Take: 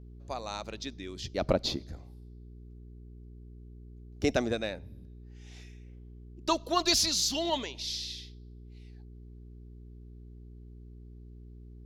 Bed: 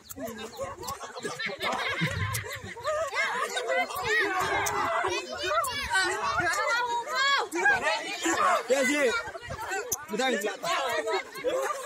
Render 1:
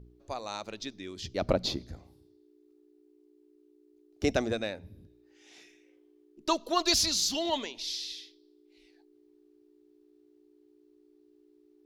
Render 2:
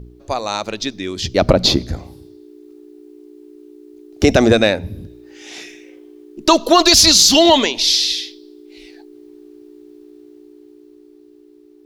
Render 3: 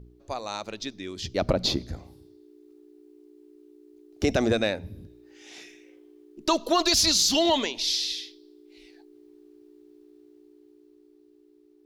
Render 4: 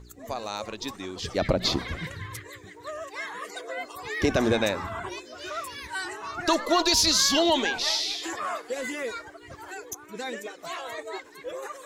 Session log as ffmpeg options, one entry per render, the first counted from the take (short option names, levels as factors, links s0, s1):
-af "bandreject=f=60:t=h:w=4,bandreject=f=120:t=h:w=4,bandreject=f=180:t=h:w=4,bandreject=f=240:t=h:w=4"
-af "dynaudnorm=f=300:g=11:m=1.88,alimiter=level_in=5.96:limit=0.891:release=50:level=0:latency=1"
-af "volume=0.266"
-filter_complex "[1:a]volume=0.422[s0];[0:a][s0]amix=inputs=2:normalize=0"